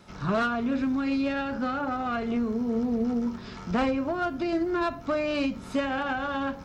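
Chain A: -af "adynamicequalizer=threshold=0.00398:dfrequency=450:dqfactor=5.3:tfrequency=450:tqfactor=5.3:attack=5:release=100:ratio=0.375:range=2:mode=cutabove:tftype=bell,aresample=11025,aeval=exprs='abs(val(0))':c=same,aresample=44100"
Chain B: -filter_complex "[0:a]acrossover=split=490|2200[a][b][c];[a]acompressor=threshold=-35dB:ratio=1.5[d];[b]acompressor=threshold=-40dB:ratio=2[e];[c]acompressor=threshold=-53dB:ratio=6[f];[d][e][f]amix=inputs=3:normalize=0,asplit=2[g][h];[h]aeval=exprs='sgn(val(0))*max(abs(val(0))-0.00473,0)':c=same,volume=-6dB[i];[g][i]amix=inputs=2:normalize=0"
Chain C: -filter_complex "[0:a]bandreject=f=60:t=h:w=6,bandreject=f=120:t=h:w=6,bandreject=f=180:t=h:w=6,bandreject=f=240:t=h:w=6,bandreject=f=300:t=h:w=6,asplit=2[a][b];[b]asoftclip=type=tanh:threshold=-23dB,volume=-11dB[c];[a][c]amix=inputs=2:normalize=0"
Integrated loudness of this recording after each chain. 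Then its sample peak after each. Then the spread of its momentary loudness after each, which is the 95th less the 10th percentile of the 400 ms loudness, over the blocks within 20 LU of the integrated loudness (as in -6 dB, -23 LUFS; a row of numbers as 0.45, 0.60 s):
-33.5, -29.0, -27.0 LUFS; -14.5, -16.0, -14.0 dBFS; 4, 3, 3 LU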